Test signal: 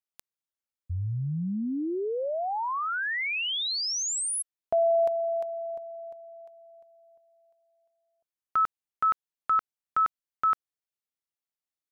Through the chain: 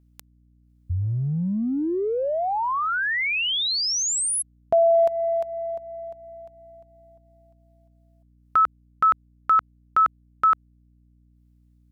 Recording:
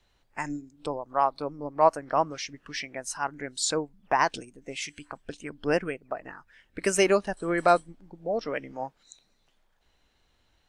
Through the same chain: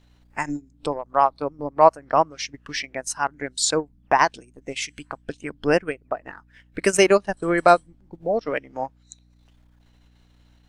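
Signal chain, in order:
transient designer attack +1 dB, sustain −11 dB
mains hum 60 Hz, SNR 33 dB
level +5.5 dB

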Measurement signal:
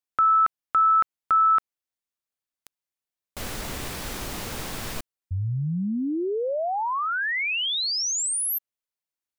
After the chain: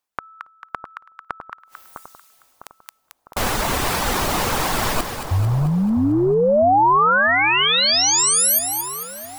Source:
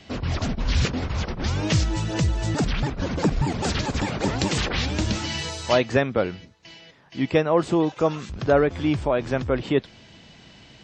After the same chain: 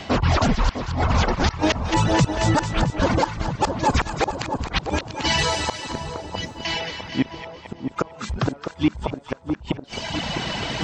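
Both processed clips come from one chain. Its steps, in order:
reverb reduction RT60 0.75 s
parametric band 920 Hz +8 dB 1.4 octaves
reversed playback
upward compression, threshold −21 dBFS
reversed playback
gate with flip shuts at −13 dBFS, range −38 dB
on a send: echo with a time of its own for lows and highs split 1,100 Hz, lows 654 ms, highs 222 ms, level −8 dB
on the sum: boost into a limiter +15 dB
level −8 dB

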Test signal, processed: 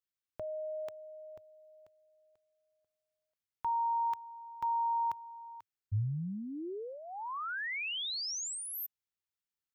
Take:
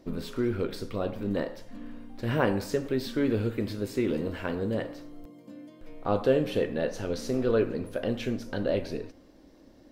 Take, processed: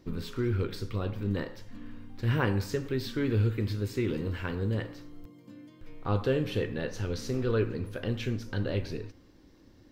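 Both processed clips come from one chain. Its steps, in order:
graphic EQ with 15 bands 100 Hz +8 dB, 250 Hz −4 dB, 630 Hz −11 dB, 10,000 Hz −5 dB

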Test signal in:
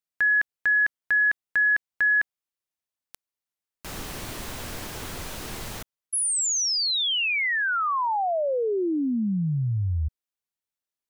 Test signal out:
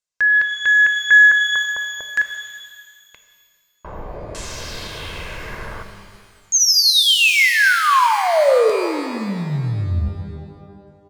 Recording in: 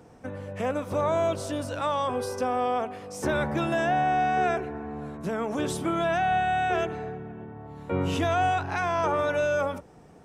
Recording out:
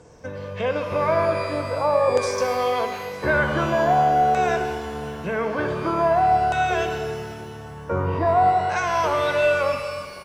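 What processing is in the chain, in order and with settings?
comb filter 1.9 ms, depth 46%
auto-filter low-pass saw down 0.46 Hz 560–7,700 Hz
reverb with rising layers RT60 1.9 s, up +12 semitones, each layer −8 dB, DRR 6 dB
level +2 dB

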